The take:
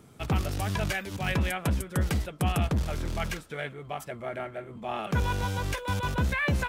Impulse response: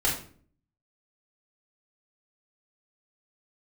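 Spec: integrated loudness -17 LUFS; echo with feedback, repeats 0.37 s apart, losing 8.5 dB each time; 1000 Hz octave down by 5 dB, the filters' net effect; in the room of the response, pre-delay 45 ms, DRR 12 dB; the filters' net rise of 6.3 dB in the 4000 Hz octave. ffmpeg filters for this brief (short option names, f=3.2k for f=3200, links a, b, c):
-filter_complex "[0:a]equalizer=f=1k:t=o:g=-7,equalizer=f=4k:t=o:g=9,aecho=1:1:370|740|1110|1480:0.376|0.143|0.0543|0.0206,asplit=2[a][b];[1:a]atrim=start_sample=2205,adelay=45[c];[b][c]afir=irnorm=-1:irlink=0,volume=-23dB[d];[a][d]amix=inputs=2:normalize=0,volume=12dB"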